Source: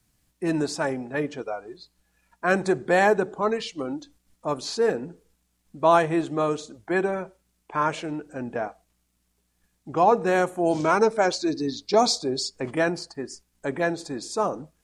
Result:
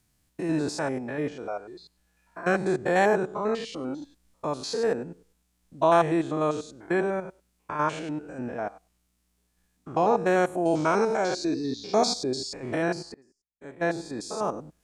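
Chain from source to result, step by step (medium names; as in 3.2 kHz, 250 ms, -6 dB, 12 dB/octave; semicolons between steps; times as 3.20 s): spectrogram pixelated in time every 100 ms; 13.14–13.83 s: upward expansion 2.5:1, over -46 dBFS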